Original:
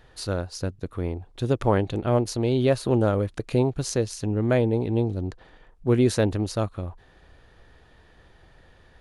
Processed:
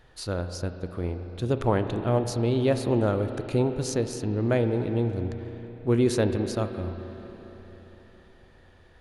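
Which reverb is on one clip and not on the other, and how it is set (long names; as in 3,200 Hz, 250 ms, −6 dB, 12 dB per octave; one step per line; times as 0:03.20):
spring reverb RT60 4 s, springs 34/56 ms, chirp 35 ms, DRR 7.5 dB
level −2.5 dB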